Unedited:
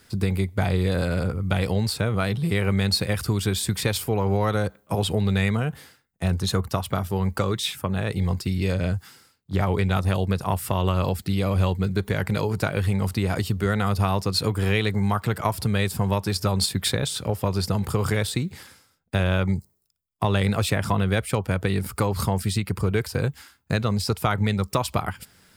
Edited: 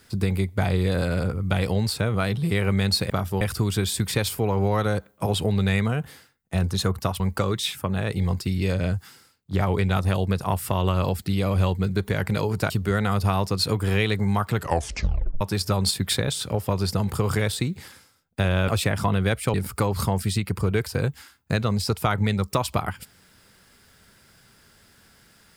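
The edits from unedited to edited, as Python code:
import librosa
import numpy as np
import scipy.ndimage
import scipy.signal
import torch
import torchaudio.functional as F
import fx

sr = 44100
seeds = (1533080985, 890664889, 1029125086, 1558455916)

y = fx.edit(x, sr, fx.move(start_s=6.89, length_s=0.31, to_s=3.1),
    fx.cut(start_s=12.7, length_s=0.75),
    fx.tape_stop(start_s=15.31, length_s=0.85),
    fx.cut(start_s=19.43, length_s=1.11),
    fx.cut(start_s=21.4, length_s=0.34), tone=tone)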